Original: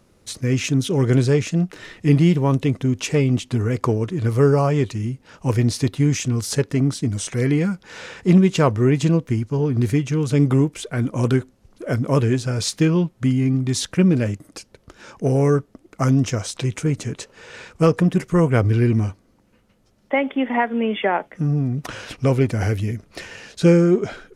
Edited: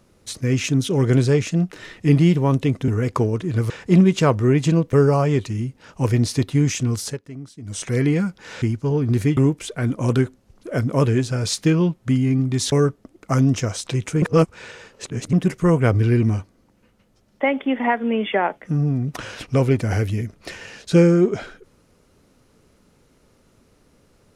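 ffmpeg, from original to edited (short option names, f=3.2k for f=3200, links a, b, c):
-filter_complex "[0:a]asplit=11[a][b][c][d][e][f][g][h][i][j][k];[a]atrim=end=2.882[l];[b]atrim=start=3.558:end=4.382[m];[c]atrim=start=8.068:end=9.302[n];[d]atrim=start=4.378:end=6.64,asetpts=PTS-STARTPTS,afade=t=out:st=2.052:d=0.21:silence=0.149624[o];[e]atrim=start=6.64:end=7.07,asetpts=PTS-STARTPTS,volume=-16.5dB[p];[f]atrim=start=7.07:end=8.072,asetpts=PTS-STARTPTS,afade=t=in:d=0.21:silence=0.149624[q];[g]atrim=start=9.298:end=10.052[r];[h]atrim=start=10.518:end=13.872[s];[i]atrim=start=15.418:end=16.922[t];[j]atrim=start=16.918:end=18.032,asetpts=PTS-STARTPTS,areverse[u];[k]atrim=start=18.028[v];[l][m]acrossfade=d=0.004:c1=hsin:c2=hsin[w];[w][n]acrossfade=d=0.004:c1=hsin:c2=hsin[x];[o][p][q]concat=n=3:v=0:a=1[y];[x][y]acrossfade=d=0.004:c1=hsin:c2=hsin[z];[z][r]acrossfade=d=0.004:c1=hsin:c2=hsin[aa];[aa][s]acrossfade=d=0.004:c1=hsin:c2=hsin[ab];[ab][t]acrossfade=d=0.004:c1=hsin:c2=hsin[ac];[ac][u]acrossfade=d=0.004:c1=hsin:c2=hsin[ad];[ad][v]acrossfade=d=0.004:c1=hsin:c2=hsin"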